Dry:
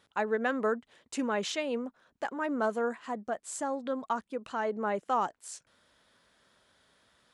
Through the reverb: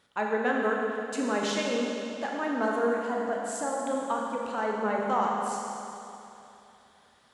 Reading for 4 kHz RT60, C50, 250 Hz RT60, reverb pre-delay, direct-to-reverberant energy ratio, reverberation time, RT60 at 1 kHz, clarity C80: 2.7 s, 0.0 dB, 2.9 s, 30 ms, -1.5 dB, 2.9 s, 2.9 s, 1.0 dB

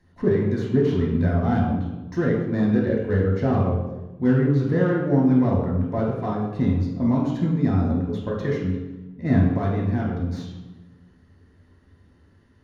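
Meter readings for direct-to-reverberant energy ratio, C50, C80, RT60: -3.0 dB, 2.0 dB, 5.0 dB, 1.1 s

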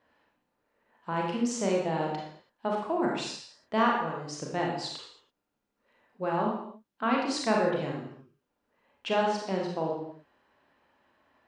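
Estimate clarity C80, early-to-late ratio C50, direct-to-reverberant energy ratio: 5.0 dB, 1.5 dB, -2.0 dB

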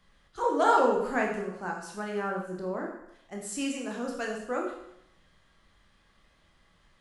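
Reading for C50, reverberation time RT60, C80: 4.0 dB, 0.80 s, 7.0 dB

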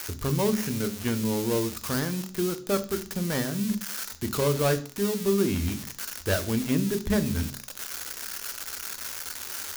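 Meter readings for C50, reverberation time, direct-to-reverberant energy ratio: 16.0 dB, 0.45 s, 9.5 dB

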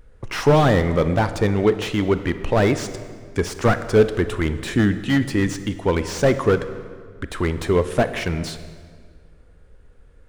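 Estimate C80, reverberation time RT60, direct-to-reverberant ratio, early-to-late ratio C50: 13.0 dB, 1.9 s, 11.0 dB, 12.0 dB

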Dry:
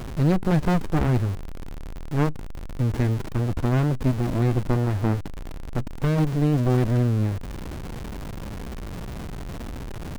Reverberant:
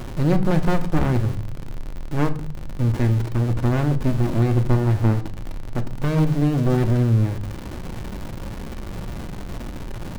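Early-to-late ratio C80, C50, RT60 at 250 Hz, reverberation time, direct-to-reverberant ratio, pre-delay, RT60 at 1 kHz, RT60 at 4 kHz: 18.5 dB, 15.0 dB, 0.90 s, 0.50 s, 7.5 dB, 3 ms, 0.50 s, 0.40 s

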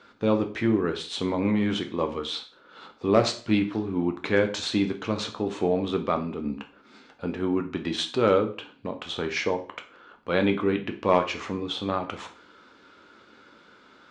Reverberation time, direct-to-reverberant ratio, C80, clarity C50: 0.40 s, 5.0 dB, 17.0 dB, 12.5 dB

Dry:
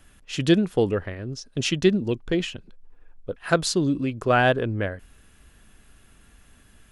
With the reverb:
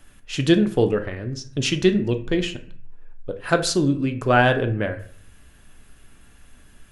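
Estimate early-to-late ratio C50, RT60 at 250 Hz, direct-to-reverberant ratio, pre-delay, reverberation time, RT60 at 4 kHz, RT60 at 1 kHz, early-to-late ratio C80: 13.5 dB, 0.55 s, 7.0 dB, 3 ms, 0.50 s, 0.35 s, 0.50 s, 16.5 dB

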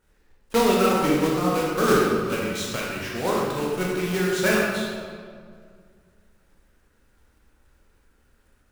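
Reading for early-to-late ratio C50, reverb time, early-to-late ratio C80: -0.5 dB, 2.0 s, 1.5 dB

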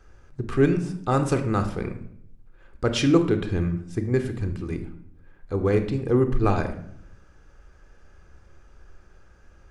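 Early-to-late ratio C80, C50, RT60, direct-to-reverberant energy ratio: 14.0 dB, 10.0 dB, 0.70 s, 8.0 dB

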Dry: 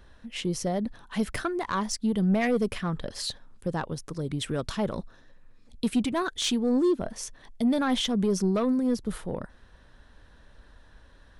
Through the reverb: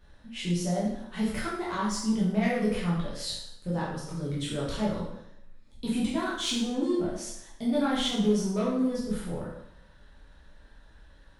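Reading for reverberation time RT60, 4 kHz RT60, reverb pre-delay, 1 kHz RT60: 0.75 s, 0.70 s, 5 ms, 0.75 s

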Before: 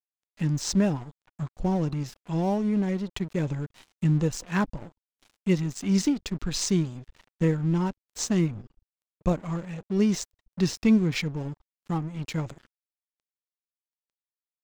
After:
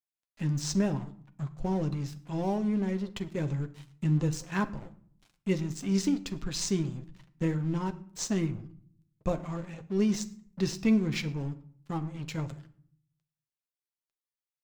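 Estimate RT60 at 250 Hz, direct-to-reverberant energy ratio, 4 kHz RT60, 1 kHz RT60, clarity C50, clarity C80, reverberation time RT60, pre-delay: 0.85 s, 7.5 dB, 0.40 s, 0.55 s, 17.0 dB, 19.5 dB, 0.55 s, 8 ms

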